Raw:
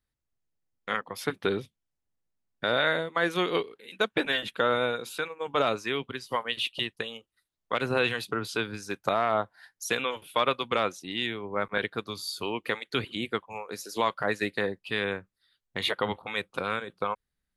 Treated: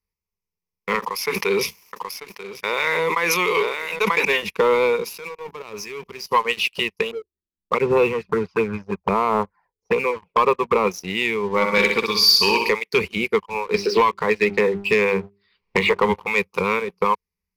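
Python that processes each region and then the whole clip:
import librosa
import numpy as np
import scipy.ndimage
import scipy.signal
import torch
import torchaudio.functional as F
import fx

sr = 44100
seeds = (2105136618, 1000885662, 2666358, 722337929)

y = fx.chain(x, sr, fx.highpass(hz=1200.0, slope=6),
    fx.echo_single(ms=939, db=-13.5),
    fx.sustainer(db_per_s=22.0), at=(0.99, 4.25))
y = fx.chain(y, sr, fx.law_mismatch(coded='mu'),
    fx.level_steps(step_db=22), at=(5.1, 6.26))
y = fx.chain(y, sr, fx.low_shelf(hz=210.0, db=4.5),
    fx.env_flanger(rest_ms=3.7, full_db=-23.5),
    fx.envelope_lowpass(base_hz=300.0, top_hz=1500.0, q=2.2, full_db=-31.0, direction='up'), at=(7.11, 10.87))
y = fx.chain(y, sr, fx.peak_eq(hz=4500.0, db=13.0, octaves=1.1),
    fx.comb(ms=3.5, depth=0.39),
    fx.room_flutter(wall_m=10.7, rt60_s=0.67), at=(11.48, 12.69))
y = fx.chain(y, sr, fx.steep_lowpass(hz=4100.0, slope=36),
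    fx.hum_notches(base_hz=50, count=8),
    fx.band_squash(depth_pct=100), at=(13.74, 16.03))
y = fx.ripple_eq(y, sr, per_octave=0.82, db=16)
y = fx.leveller(y, sr, passes=2)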